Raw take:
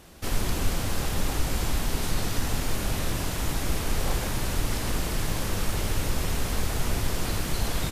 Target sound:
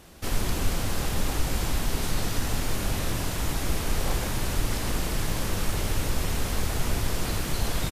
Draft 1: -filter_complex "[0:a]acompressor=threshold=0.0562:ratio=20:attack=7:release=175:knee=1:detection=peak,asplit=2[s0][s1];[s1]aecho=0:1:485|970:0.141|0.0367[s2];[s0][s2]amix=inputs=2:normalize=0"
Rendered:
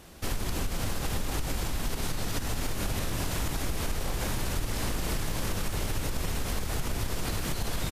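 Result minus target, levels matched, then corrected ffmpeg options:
compression: peak gain reduction +10.5 dB
-filter_complex "[0:a]asplit=2[s0][s1];[s1]aecho=0:1:485|970:0.141|0.0367[s2];[s0][s2]amix=inputs=2:normalize=0"

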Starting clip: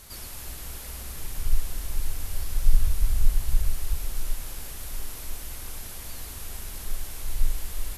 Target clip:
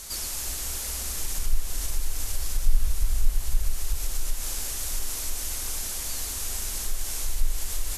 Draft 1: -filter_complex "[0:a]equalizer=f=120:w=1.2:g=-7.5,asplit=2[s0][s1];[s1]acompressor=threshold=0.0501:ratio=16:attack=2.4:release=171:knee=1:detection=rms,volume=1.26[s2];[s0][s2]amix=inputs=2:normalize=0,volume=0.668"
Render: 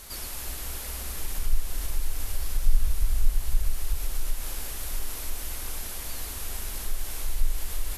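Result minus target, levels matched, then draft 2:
8 kHz band -3.5 dB
-filter_complex "[0:a]equalizer=f=120:w=1.2:g=-7.5,asplit=2[s0][s1];[s1]acompressor=threshold=0.0501:ratio=16:attack=2.4:release=171:knee=1:detection=rms,equalizer=f=6800:w=0.76:g=13.5,volume=1.26[s2];[s0][s2]amix=inputs=2:normalize=0,volume=0.668"

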